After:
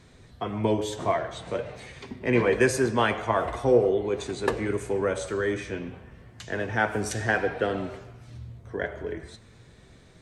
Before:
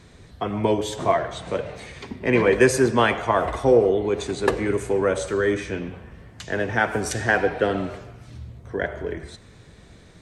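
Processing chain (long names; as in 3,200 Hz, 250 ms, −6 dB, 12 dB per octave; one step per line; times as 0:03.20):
flanger 0.5 Hz, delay 7.6 ms, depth 2.1 ms, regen +72%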